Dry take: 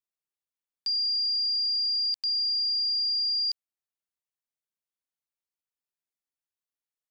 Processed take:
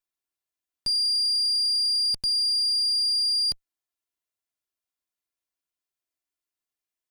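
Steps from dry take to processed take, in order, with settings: comb filter that takes the minimum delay 2.9 ms; trim +3.5 dB

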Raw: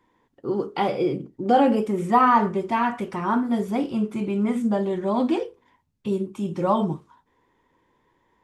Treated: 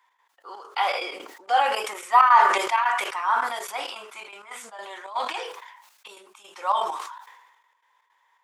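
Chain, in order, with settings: high-pass 860 Hz 24 dB/octave; trance gate "x.x.xx.xx" 163 bpm -12 dB; decay stretcher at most 49 dB/s; trim +4 dB

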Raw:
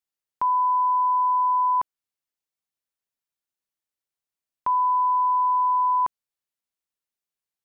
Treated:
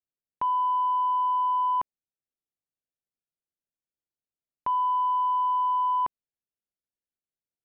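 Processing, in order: local Wiener filter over 41 samples

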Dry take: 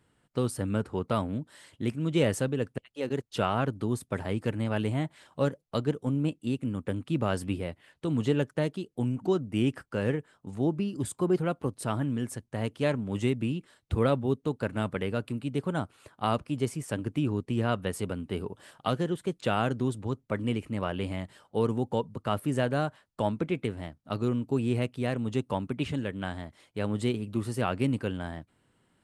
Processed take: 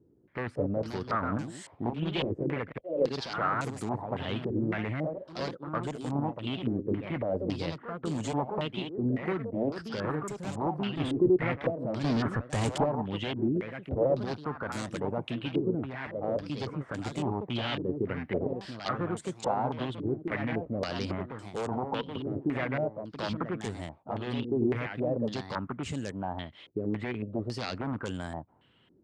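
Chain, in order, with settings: one-sided wavefolder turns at -22.5 dBFS; high-pass 41 Hz; 12.04–12.84 s: waveshaping leveller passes 5; in parallel at -2 dB: compression, threshold -41 dBFS, peak gain reduction 17 dB; on the sum: peak limiter -23 dBFS, peak gain reduction 6.5 dB; ever faster or slower copies 244 ms, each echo +2 st, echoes 2, each echo -6 dB; Chebyshev shaper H 3 -19 dB, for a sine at -18 dBFS; step-sequenced low-pass 3.6 Hz 370–7400 Hz

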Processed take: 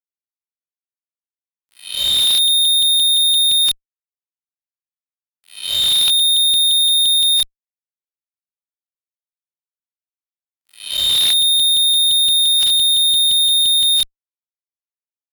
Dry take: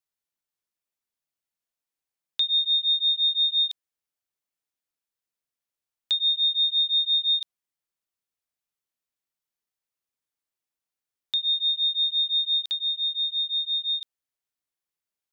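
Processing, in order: reverse spectral sustain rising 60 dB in 0.83 s; whistle 3.1 kHz -54 dBFS; fuzz box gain 49 dB, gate -52 dBFS

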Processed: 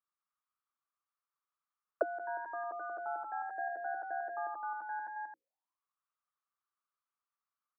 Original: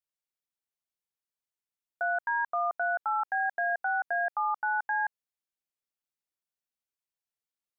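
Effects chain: hum notches 60/120/180/240/300/360/420/480/540 Hz; loudspeakers at several distances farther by 64 m -2 dB, 93 m -7 dB; auto-wah 320–1200 Hz, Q 8.4, down, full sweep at -29.5 dBFS; trim +14 dB

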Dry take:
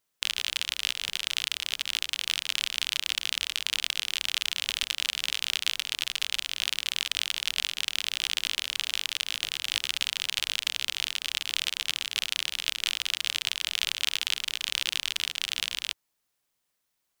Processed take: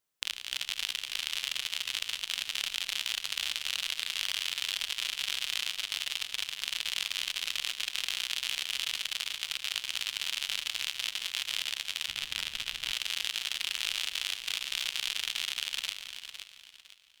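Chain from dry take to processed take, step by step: backward echo that repeats 253 ms, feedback 54%, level -2 dB; reverberation RT60 3.0 s, pre-delay 16 ms, DRR 15.5 dB; level held to a coarse grid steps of 10 dB; 12.08–12.92 s: tone controls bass +11 dB, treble -3 dB; trim -3.5 dB

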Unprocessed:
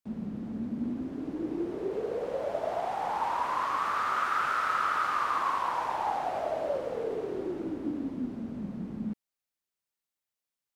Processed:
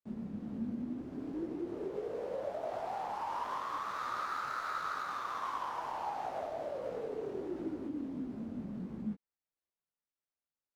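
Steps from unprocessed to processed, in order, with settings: median filter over 15 samples; compression, threshold -31 dBFS, peak gain reduction 5.5 dB; detune thickener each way 50 cents

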